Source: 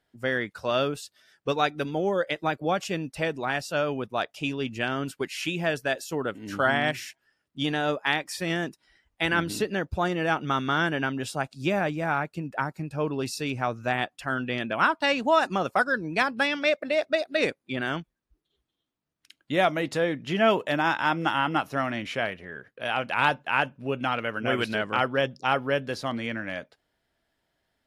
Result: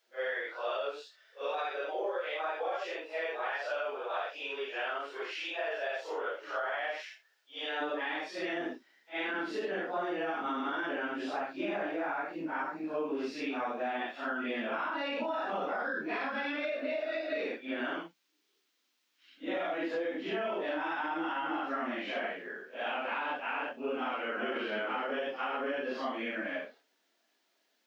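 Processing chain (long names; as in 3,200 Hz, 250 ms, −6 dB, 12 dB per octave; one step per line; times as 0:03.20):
random phases in long frames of 200 ms
Butterworth high-pass 440 Hz 36 dB per octave, from 0:07.80 240 Hz
brickwall limiter −19 dBFS, peak gain reduction 8.5 dB
downward compressor, threshold −30 dBFS, peak gain reduction 7 dB
background noise violet −55 dBFS
high-frequency loss of the air 230 metres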